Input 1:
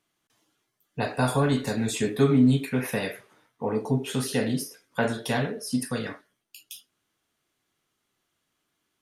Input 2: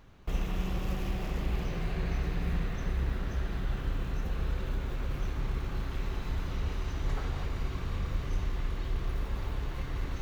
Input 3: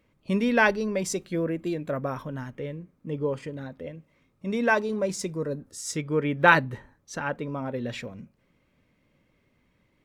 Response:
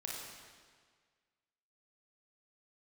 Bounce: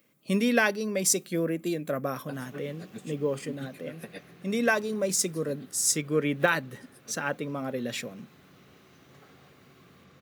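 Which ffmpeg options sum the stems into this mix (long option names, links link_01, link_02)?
-filter_complex "[0:a]aeval=exprs='val(0)*pow(10,-28*(0.5-0.5*cos(2*PI*7.5*n/s))/20)':channel_layout=same,adelay=1100,volume=-7dB[link_01];[1:a]adelay=2050,volume=-14dB[link_02];[2:a]aemphasis=mode=production:type=50kf,alimiter=limit=-11dB:level=0:latency=1:release=441,volume=-0.5dB,asplit=2[link_03][link_04];[link_04]apad=whole_len=445925[link_05];[link_01][link_05]sidechaincompress=threshold=-37dB:ratio=8:attack=38:release=862[link_06];[link_06][link_02][link_03]amix=inputs=3:normalize=0,highpass=frequency=140:width=0.5412,highpass=frequency=140:width=1.3066,highshelf=frequency=8100:gain=5.5,bandreject=frequency=930:width=6.7"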